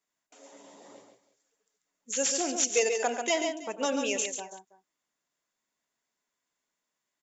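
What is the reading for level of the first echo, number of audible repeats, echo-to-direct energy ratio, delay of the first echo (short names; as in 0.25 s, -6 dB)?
-15.5 dB, 3, -5.5 dB, 92 ms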